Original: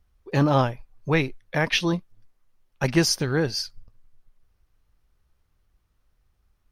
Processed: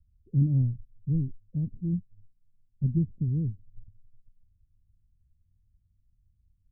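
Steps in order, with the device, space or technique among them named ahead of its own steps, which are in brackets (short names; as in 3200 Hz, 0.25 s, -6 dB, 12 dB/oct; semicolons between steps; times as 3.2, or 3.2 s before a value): the neighbour's flat through the wall (LPF 220 Hz 24 dB/oct; bell 95 Hz +8 dB 0.68 oct); gain -1.5 dB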